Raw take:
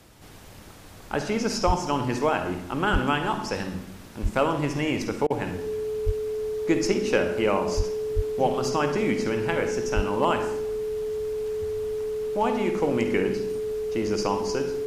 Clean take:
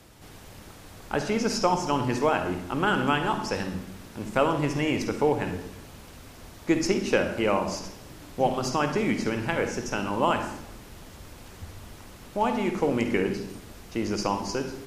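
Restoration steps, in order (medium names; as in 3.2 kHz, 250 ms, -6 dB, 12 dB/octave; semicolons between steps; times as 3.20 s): clip repair -10.5 dBFS; band-stop 430 Hz, Q 30; de-plosive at 1.66/2.92/4.22/6.05/7.76/8.15/9.95 s; interpolate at 5.27 s, 31 ms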